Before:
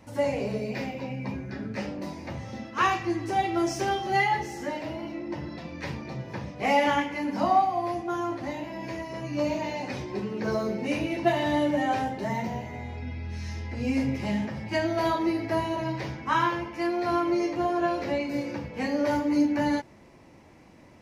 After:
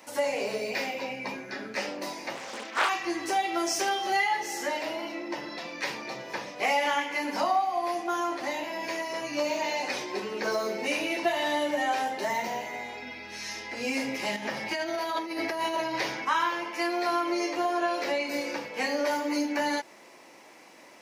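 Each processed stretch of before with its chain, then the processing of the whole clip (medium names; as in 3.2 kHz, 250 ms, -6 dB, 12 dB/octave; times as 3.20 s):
2.35–2.89 s: Bessel high-pass 180 Hz, order 8 + loudspeaker Doppler distortion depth 0.63 ms
14.36–16.25 s: bass shelf 160 Hz +3 dB + compressor with a negative ratio -31 dBFS + band-stop 7.7 kHz, Q 7.9
whole clip: high-pass 360 Hz 12 dB/octave; tilt EQ +2 dB/octave; compression 2.5:1, threshold -31 dBFS; trim +5 dB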